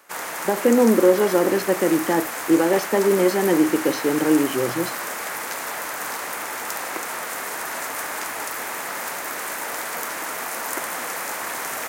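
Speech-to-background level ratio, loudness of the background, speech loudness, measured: 8.0 dB, -28.0 LUFS, -20.0 LUFS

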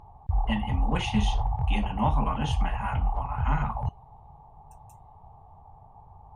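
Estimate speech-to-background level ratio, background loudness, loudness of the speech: -1.5 dB, -30.5 LUFS, -32.0 LUFS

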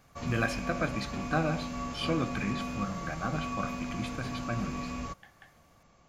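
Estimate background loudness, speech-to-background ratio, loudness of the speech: -37.5 LUFS, 3.0 dB, -34.5 LUFS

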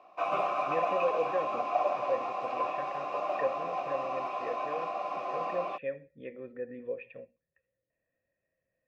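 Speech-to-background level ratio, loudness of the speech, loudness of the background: -5.0 dB, -38.0 LUFS, -33.0 LUFS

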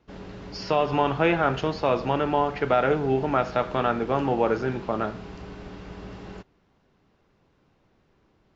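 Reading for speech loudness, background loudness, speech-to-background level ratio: -24.5 LUFS, -41.0 LUFS, 16.5 dB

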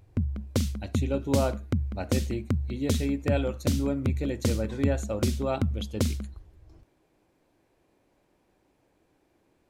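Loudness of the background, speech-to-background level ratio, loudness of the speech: -31.0 LUFS, -1.0 dB, -32.0 LUFS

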